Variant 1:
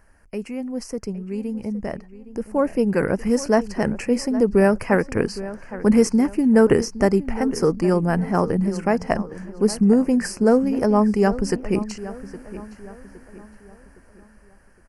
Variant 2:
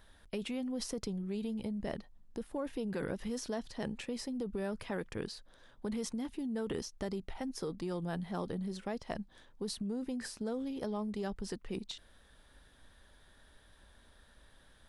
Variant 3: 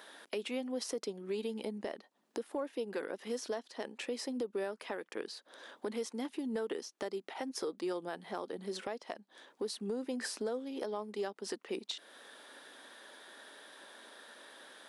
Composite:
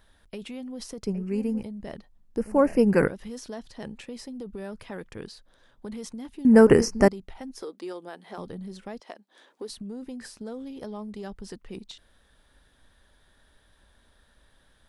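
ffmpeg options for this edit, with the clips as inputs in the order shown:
-filter_complex "[0:a]asplit=3[s0][s1][s2];[2:a]asplit=2[s3][s4];[1:a]asplit=6[s5][s6][s7][s8][s9][s10];[s5]atrim=end=1.062[s11];[s0]atrim=start=1.058:end=1.632[s12];[s6]atrim=start=1.628:end=2.372[s13];[s1]atrim=start=2.368:end=3.082[s14];[s7]atrim=start=3.078:end=6.452[s15];[s2]atrim=start=6.448:end=7.082[s16];[s8]atrim=start=7.078:end=7.622[s17];[s3]atrim=start=7.618:end=8.382[s18];[s9]atrim=start=8.378:end=9.002[s19];[s4]atrim=start=8.998:end=9.692[s20];[s10]atrim=start=9.688[s21];[s11][s12]acrossfade=d=0.004:c1=hsin:c2=hsin[s22];[s22][s13]acrossfade=d=0.004:c1=hsin:c2=hsin[s23];[s23][s14]acrossfade=d=0.004:c1=hsin:c2=hsin[s24];[s24][s15]acrossfade=d=0.004:c1=hsin:c2=hsin[s25];[s25][s16]acrossfade=d=0.004:c1=hsin:c2=hsin[s26];[s26][s17]acrossfade=d=0.004:c1=hsin:c2=hsin[s27];[s27][s18]acrossfade=d=0.004:c1=hsin:c2=hsin[s28];[s28][s19]acrossfade=d=0.004:c1=hsin:c2=hsin[s29];[s29][s20]acrossfade=d=0.004:c1=hsin:c2=hsin[s30];[s30][s21]acrossfade=d=0.004:c1=hsin:c2=hsin"

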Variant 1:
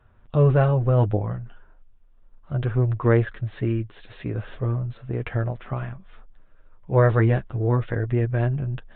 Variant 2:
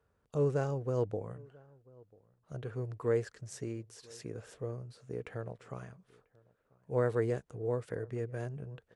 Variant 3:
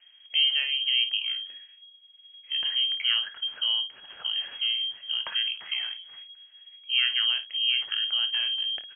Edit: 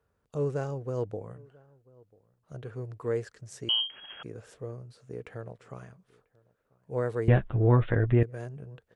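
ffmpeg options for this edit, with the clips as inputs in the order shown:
-filter_complex "[1:a]asplit=3[s0][s1][s2];[s0]atrim=end=3.692[s3];[2:a]atrim=start=3.688:end=4.232[s4];[s1]atrim=start=4.228:end=7.282[s5];[0:a]atrim=start=7.278:end=8.232[s6];[s2]atrim=start=8.228[s7];[s3][s4]acrossfade=d=0.004:c1=hsin:c2=hsin[s8];[s8][s5]acrossfade=d=0.004:c1=hsin:c2=hsin[s9];[s9][s6]acrossfade=d=0.004:c1=hsin:c2=hsin[s10];[s10][s7]acrossfade=d=0.004:c1=hsin:c2=hsin"

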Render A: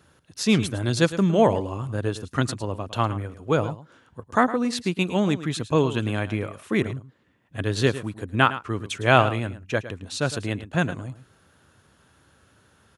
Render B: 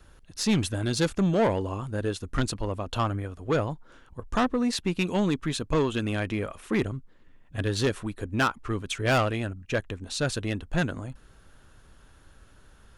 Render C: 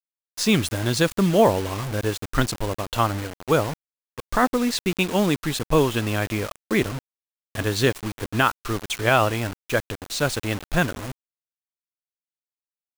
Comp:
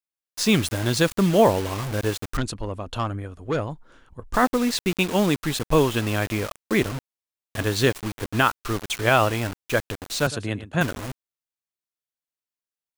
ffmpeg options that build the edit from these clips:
-filter_complex "[2:a]asplit=3[s0][s1][s2];[s0]atrim=end=2.372[s3];[1:a]atrim=start=2.368:end=4.342[s4];[s1]atrim=start=4.338:end=10.272[s5];[0:a]atrim=start=10.268:end=10.812[s6];[s2]atrim=start=10.808[s7];[s3][s4]acrossfade=d=0.004:c1=hsin:c2=hsin[s8];[s8][s5]acrossfade=d=0.004:c1=hsin:c2=hsin[s9];[s9][s6]acrossfade=d=0.004:c1=hsin:c2=hsin[s10];[s10][s7]acrossfade=d=0.004:c1=hsin:c2=hsin"

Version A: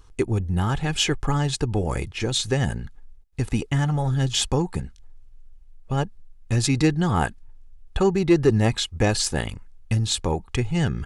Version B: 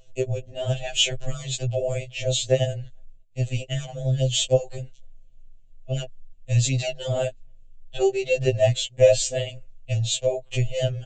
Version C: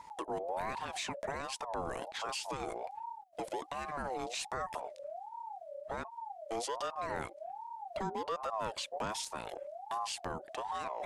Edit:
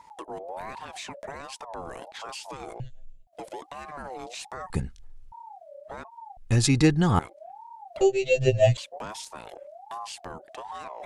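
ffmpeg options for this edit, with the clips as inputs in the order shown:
-filter_complex "[1:a]asplit=2[s0][s1];[0:a]asplit=2[s2][s3];[2:a]asplit=5[s4][s5][s6][s7][s8];[s4]atrim=end=2.802[s9];[s0]atrim=start=2.798:end=3.272[s10];[s5]atrim=start=3.268:end=4.702[s11];[s2]atrim=start=4.698:end=5.322[s12];[s6]atrim=start=5.318:end=6.372[s13];[s3]atrim=start=6.368:end=7.192[s14];[s7]atrim=start=7.188:end=8.012[s15];[s1]atrim=start=8.008:end=8.772[s16];[s8]atrim=start=8.768[s17];[s9][s10]acrossfade=d=0.004:c1=hsin:c2=hsin[s18];[s18][s11]acrossfade=d=0.004:c1=hsin:c2=hsin[s19];[s19][s12]acrossfade=d=0.004:c1=hsin:c2=hsin[s20];[s20][s13]acrossfade=d=0.004:c1=hsin:c2=hsin[s21];[s21][s14]acrossfade=d=0.004:c1=hsin:c2=hsin[s22];[s22][s15]acrossfade=d=0.004:c1=hsin:c2=hsin[s23];[s23][s16]acrossfade=d=0.004:c1=hsin:c2=hsin[s24];[s24][s17]acrossfade=d=0.004:c1=hsin:c2=hsin"

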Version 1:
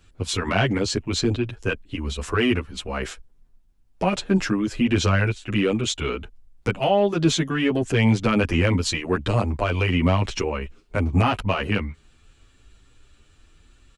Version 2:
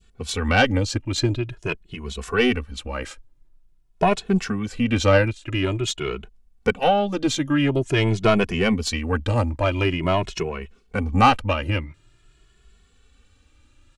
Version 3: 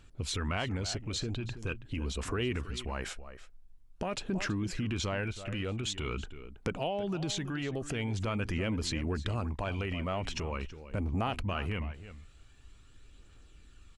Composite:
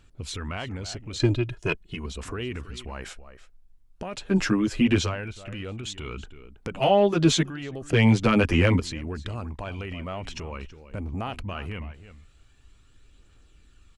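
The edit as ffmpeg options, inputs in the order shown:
-filter_complex "[0:a]asplit=3[s0][s1][s2];[2:a]asplit=5[s3][s4][s5][s6][s7];[s3]atrim=end=1.202[s8];[1:a]atrim=start=1.198:end=2.062[s9];[s4]atrim=start=2.058:end=4.4[s10];[s0]atrim=start=4.16:end=5.17[s11];[s5]atrim=start=4.93:end=6.742[s12];[s1]atrim=start=6.738:end=7.432[s13];[s6]atrim=start=7.428:end=7.932[s14];[s2]atrim=start=7.928:end=8.802[s15];[s7]atrim=start=8.798[s16];[s8][s9]acrossfade=d=0.004:c1=hsin:c2=hsin[s17];[s17][s10]acrossfade=d=0.004:c1=hsin:c2=hsin[s18];[s18][s11]acrossfade=d=0.24:c1=tri:c2=tri[s19];[s19][s12]acrossfade=d=0.24:c1=tri:c2=tri[s20];[s20][s13]acrossfade=d=0.004:c1=hsin:c2=hsin[s21];[s21][s14]acrossfade=d=0.004:c1=hsin:c2=hsin[s22];[s22][s15]acrossfade=d=0.004:c1=hsin:c2=hsin[s23];[s23][s16]acrossfade=d=0.004:c1=hsin:c2=hsin"

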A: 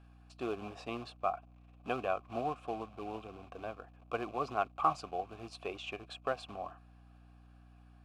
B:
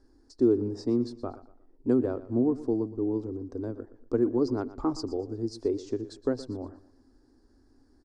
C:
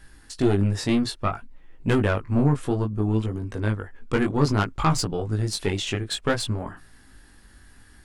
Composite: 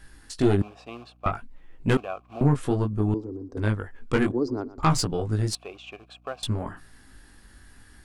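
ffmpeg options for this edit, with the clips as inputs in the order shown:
-filter_complex "[0:a]asplit=3[s0][s1][s2];[1:a]asplit=2[s3][s4];[2:a]asplit=6[s5][s6][s7][s8][s9][s10];[s5]atrim=end=0.622[s11];[s0]atrim=start=0.618:end=1.262[s12];[s6]atrim=start=1.258:end=1.972[s13];[s1]atrim=start=1.968:end=2.412[s14];[s7]atrim=start=2.408:end=3.142[s15];[s3]atrim=start=3.138:end=3.572[s16];[s8]atrim=start=3.568:end=4.322[s17];[s4]atrim=start=4.318:end=4.832[s18];[s9]atrim=start=4.828:end=5.552[s19];[s2]atrim=start=5.548:end=6.432[s20];[s10]atrim=start=6.428[s21];[s11][s12]acrossfade=d=0.004:c1=hsin:c2=hsin[s22];[s22][s13]acrossfade=d=0.004:c1=hsin:c2=hsin[s23];[s23][s14]acrossfade=d=0.004:c1=hsin:c2=hsin[s24];[s24][s15]acrossfade=d=0.004:c1=hsin:c2=hsin[s25];[s25][s16]acrossfade=d=0.004:c1=hsin:c2=hsin[s26];[s26][s17]acrossfade=d=0.004:c1=hsin:c2=hsin[s27];[s27][s18]acrossfade=d=0.004:c1=hsin:c2=hsin[s28];[s28][s19]acrossfade=d=0.004:c1=hsin:c2=hsin[s29];[s29][s20]acrossfade=d=0.004:c1=hsin:c2=hsin[s30];[s30][s21]acrossfade=d=0.004:c1=hsin:c2=hsin"

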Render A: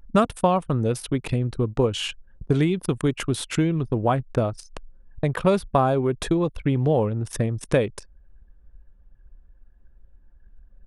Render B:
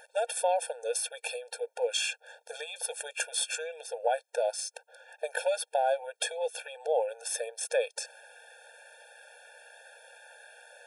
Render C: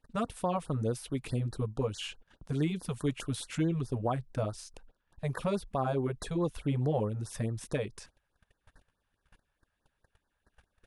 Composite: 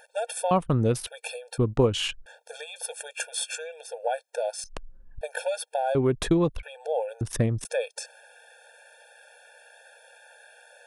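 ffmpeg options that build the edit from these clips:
-filter_complex "[0:a]asplit=5[s0][s1][s2][s3][s4];[1:a]asplit=6[s5][s6][s7][s8][s9][s10];[s5]atrim=end=0.512[s11];[s0]atrim=start=0.508:end=1.072[s12];[s6]atrim=start=1.068:end=1.582[s13];[s1]atrim=start=1.578:end=2.262[s14];[s7]atrim=start=2.258:end=4.642[s15];[s2]atrim=start=4.638:end=5.212[s16];[s8]atrim=start=5.208:end=5.952[s17];[s3]atrim=start=5.948:end=6.632[s18];[s9]atrim=start=6.628:end=7.212[s19];[s4]atrim=start=7.208:end=7.652[s20];[s10]atrim=start=7.648[s21];[s11][s12]acrossfade=d=0.004:c1=hsin:c2=hsin[s22];[s22][s13]acrossfade=d=0.004:c1=hsin:c2=hsin[s23];[s23][s14]acrossfade=d=0.004:c1=hsin:c2=hsin[s24];[s24][s15]acrossfade=d=0.004:c1=hsin:c2=hsin[s25];[s25][s16]acrossfade=d=0.004:c1=hsin:c2=hsin[s26];[s26][s17]acrossfade=d=0.004:c1=hsin:c2=hsin[s27];[s27][s18]acrossfade=d=0.004:c1=hsin:c2=hsin[s28];[s28][s19]acrossfade=d=0.004:c1=hsin:c2=hsin[s29];[s29][s20]acrossfade=d=0.004:c1=hsin:c2=hsin[s30];[s30][s21]acrossfade=d=0.004:c1=hsin:c2=hsin"

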